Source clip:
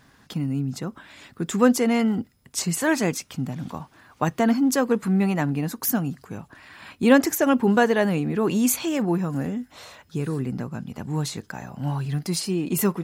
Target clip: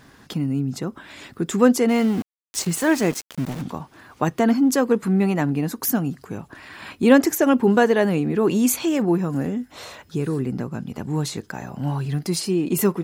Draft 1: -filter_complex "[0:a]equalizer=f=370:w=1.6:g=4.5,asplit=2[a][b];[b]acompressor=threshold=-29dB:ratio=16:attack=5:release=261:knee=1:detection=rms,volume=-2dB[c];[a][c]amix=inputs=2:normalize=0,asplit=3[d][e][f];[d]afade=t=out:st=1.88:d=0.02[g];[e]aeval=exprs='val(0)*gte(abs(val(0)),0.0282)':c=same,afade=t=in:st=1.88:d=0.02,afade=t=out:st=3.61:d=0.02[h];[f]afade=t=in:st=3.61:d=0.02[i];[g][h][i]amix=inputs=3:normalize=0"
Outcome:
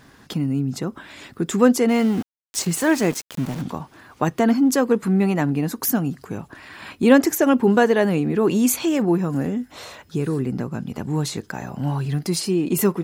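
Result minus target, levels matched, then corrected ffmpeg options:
compressor: peak gain reduction -6 dB
-filter_complex "[0:a]equalizer=f=370:w=1.6:g=4.5,asplit=2[a][b];[b]acompressor=threshold=-35.5dB:ratio=16:attack=5:release=261:knee=1:detection=rms,volume=-2dB[c];[a][c]amix=inputs=2:normalize=0,asplit=3[d][e][f];[d]afade=t=out:st=1.88:d=0.02[g];[e]aeval=exprs='val(0)*gte(abs(val(0)),0.0282)':c=same,afade=t=in:st=1.88:d=0.02,afade=t=out:st=3.61:d=0.02[h];[f]afade=t=in:st=3.61:d=0.02[i];[g][h][i]amix=inputs=3:normalize=0"

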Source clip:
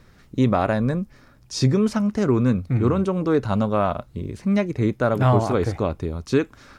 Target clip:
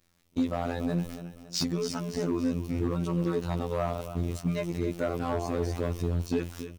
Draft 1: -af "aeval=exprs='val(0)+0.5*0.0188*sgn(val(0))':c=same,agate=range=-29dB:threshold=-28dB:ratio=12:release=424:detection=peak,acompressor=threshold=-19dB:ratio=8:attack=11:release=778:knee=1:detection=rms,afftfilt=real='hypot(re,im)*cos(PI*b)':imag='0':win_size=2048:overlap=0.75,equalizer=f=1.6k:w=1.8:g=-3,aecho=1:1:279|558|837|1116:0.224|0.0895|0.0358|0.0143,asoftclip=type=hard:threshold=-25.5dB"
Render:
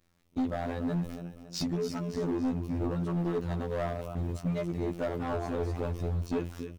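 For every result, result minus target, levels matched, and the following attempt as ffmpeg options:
hard clip: distortion +6 dB; 4000 Hz band -4.0 dB
-af "aeval=exprs='val(0)+0.5*0.0188*sgn(val(0))':c=same,agate=range=-29dB:threshold=-28dB:ratio=12:release=424:detection=peak,acompressor=threshold=-19dB:ratio=8:attack=11:release=778:knee=1:detection=rms,afftfilt=real='hypot(re,im)*cos(PI*b)':imag='0':win_size=2048:overlap=0.75,equalizer=f=1.6k:w=1.8:g=-3,aecho=1:1:279|558|837|1116:0.224|0.0895|0.0358|0.0143,asoftclip=type=hard:threshold=-19dB"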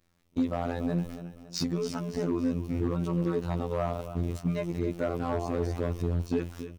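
4000 Hz band -3.5 dB
-af "aeval=exprs='val(0)+0.5*0.0188*sgn(val(0))':c=same,agate=range=-29dB:threshold=-28dB:ratio=12:release=424:detection=peak,acompressor=threshold=-19dB:ratio=8:attack=11:release=778:knee=1:detection=rms,highshelf=f=2.5k:g=7,afftfilt=real='hypot(re,im)*cos(PI*b)':imag='0':win_size=2048:overlap=0.75,equalizer=f=1.6k:w=1.8:g=-3,aecho=1:1:279|558|837|1116:0.224|0.0895|0.0358|0.0143,asoftclip=type=hard:threshold=-19dB"

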